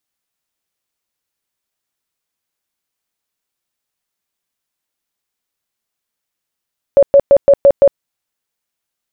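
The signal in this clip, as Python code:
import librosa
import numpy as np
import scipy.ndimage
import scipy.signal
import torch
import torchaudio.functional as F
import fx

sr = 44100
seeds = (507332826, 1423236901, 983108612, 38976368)

y = fx.tone_burst(sr, hz=560.0, cycles=32, every_s=0.17, bursts=6, level_db=-3.0)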